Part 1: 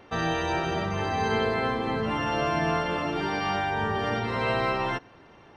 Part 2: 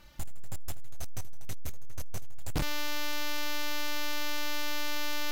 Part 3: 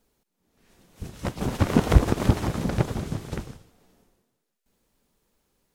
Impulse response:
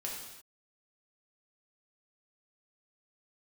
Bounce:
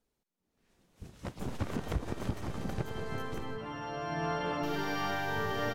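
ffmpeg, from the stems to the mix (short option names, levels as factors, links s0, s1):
-filter_complex "[0:a]aecho=1:1:7:0.39,adelay=1550,volume=0.473,afade=t=in:st=2.85:d=0.32:silence=0.421697,afade=t=in:st=3.99:d=0.46:silence=0.446684[s0];[1:a]adelay=1200,volume=0.211,asplit=3[s1][s2][s3];[s1]atrim=end=3.57,asetpts=PTS-STARTPTS,afade=t=out:st=3.566:d=0.004:c=hsin[s4];[s2]atrim=start=3.57:end=4.63,asetpts=PTS-STARTPTS,volume=0[s5];[s3]atrim=start=4.63,asetpts=PTS-STARTPTS,afade=t=in:d=0.004:c=hsin[s6];[s4][s5][s6]concat=n=3:v=0:a=1[s7];[2:a]highshelf=f=11000:g=-6.5,volume=0.282[s8];[s0][s7][s8]amix=inputs=3:normalize=0,alimiter=limit=0.0794:level=0:latency=1:release=215"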